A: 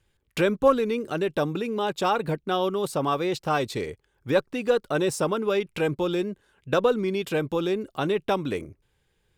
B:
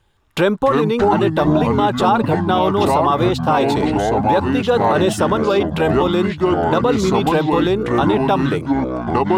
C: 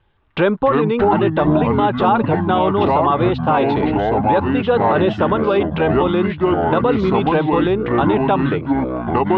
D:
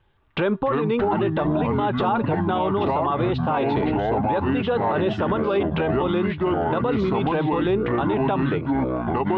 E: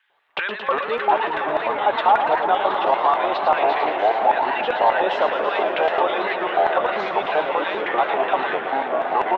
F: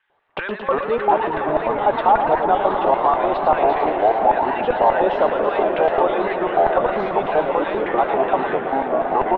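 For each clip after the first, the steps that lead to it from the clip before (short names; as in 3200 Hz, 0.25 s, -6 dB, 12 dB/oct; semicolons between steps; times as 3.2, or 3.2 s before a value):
echoes that change speed 0.167 s, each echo -5 st, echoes 3; EQ curve 520 Hz 0 dB, 860 Hz +8 dB, 2300 Hz -4 dB, 3500 Hz +2 dB, 5100 Hz -4 dB; limiter -14 dBFS, peak gain reduction 10 dB; gain +8 dB
LPF 3200 Hz 24 dB/oct
limiter -12 dBFS, peak gain reduction 6 dB; resonator 130 Hz, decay 0.32 s, harmonics odd, mix 40%; gain +2 dB
LFO high-pass square 5.1 Hz 670–1800 Hz; echo 0.72 s -11.5 dB; warbling echo 0.112 s, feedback 80%, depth 186 cents, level -8 dB; gain +1.5 dB
tilt -4 dB/oct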